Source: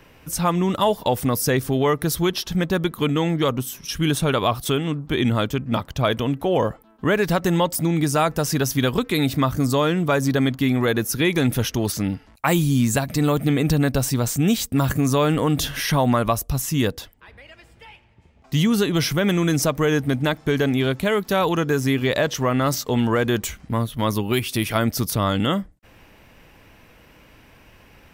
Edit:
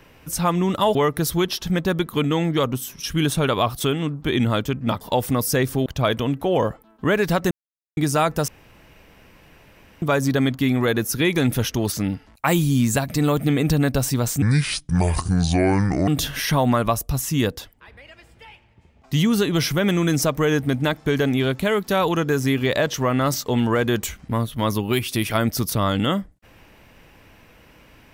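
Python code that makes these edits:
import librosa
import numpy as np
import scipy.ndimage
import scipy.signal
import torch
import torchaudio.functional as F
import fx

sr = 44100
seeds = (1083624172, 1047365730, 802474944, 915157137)

y = fx.edit(x, sr, fx.move(start_s=0.95, length_s=0.85, to_s=5.86),
    fx.silence(start_s=7.51, length_s=0.46),
    fx.room_tone_fill(start_s=8.48, length_s=1.54),
    fx.speed_span(start_s=14.42, length_s=1.06, speed=0.64), tone=tone)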